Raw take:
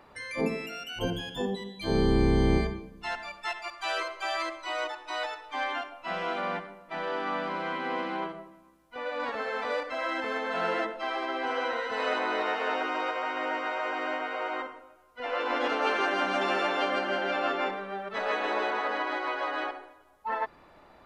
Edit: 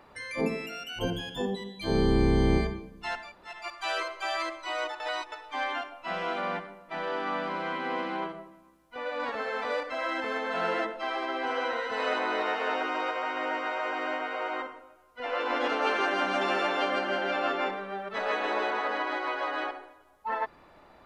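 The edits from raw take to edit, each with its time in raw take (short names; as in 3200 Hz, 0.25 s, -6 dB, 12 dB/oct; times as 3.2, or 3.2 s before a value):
3.28–3.54 room tone, crossfade 0.24 s
5–5.32 reverse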